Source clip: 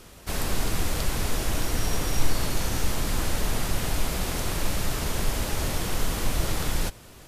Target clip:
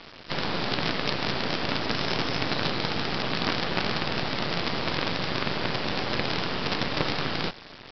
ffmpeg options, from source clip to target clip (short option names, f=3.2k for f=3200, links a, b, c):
-af "highpass=f=140:w=0.5412,highpass=f=140:w=1.3066,asetrate=40517,aresample=44100,aresample=11025,acrusher=bits=5:dc=4:mix=0:aa=0.000001,aresample=44100,volume=7.5dB"